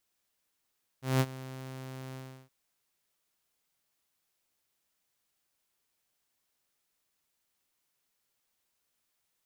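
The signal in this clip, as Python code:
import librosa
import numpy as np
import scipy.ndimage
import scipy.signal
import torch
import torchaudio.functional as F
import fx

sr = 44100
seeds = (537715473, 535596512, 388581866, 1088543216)

y = fx.adsr_tone(sr, wave='saw', hz=131.0, attack_ms=184.0, decay_ms=49.0, sustain_db=-18.5, held_s=1.13, release_ms=341.0, level_db=-19.5)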